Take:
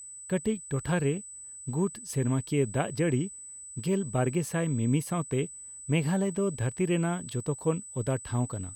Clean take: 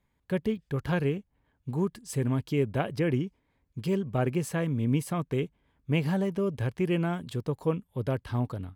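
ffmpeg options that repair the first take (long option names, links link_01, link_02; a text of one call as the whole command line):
ffmpeg -i in.wav -af "bandreject=frequency=8000:width=30" out.wav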